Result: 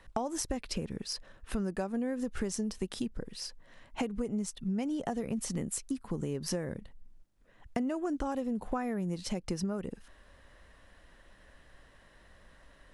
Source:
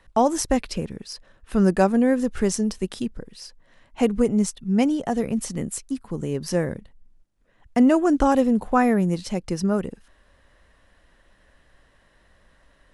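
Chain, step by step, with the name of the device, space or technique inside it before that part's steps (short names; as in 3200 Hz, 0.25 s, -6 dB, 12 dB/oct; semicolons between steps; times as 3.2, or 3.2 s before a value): serial compression, leveller first (compressor 2:1, threshold -21 dBFS, peak gain reduction 5.5 dB; compressor 6:1, threshold -31 dBFS, peak gain reduction 13.5 dB)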